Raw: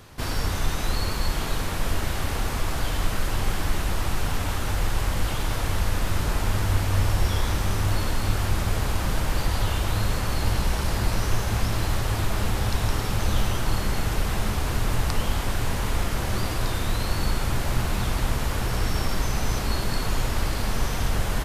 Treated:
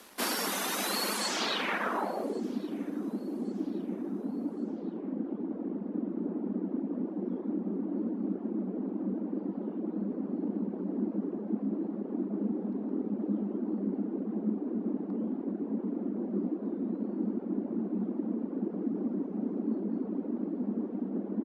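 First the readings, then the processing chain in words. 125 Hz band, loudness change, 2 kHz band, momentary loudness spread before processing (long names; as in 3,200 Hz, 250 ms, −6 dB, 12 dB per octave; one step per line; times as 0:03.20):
−18.5 dB, −6.5 dB, can't be measured, 2 LU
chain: reverb reduction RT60 0.73 s
Butterworth high-pass 190 Hz 96 dB per octave
dead-zone distortion −56.5 dBFS
low-pass filter sweep 12,000 Hz → 290 Hz, 0:01.11–0:02.44
repeating echo 1,120 ms, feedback 41%, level −24 dB
level +1.5 dB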